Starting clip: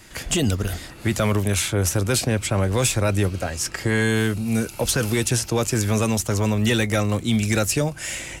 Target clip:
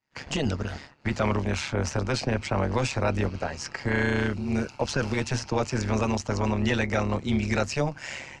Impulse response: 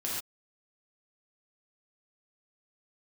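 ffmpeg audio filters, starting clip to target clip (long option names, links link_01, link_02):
-af "agate=range=-33dB:threshold=-30dB:ratio=3:detection=peak,highpass=100,equalizer=frequency=330:width_type=q:width=4:gain=-7,equalizer=frequency=900:width_type=q:width=4:gain=6,equalizer=frequency=3500:width_type=q:width=4:gain=-8,lowpass=frequency=5400:width=0.5412,lowpass=frequency=5400:width=1.3066,tremolo=f=140:d=0.75"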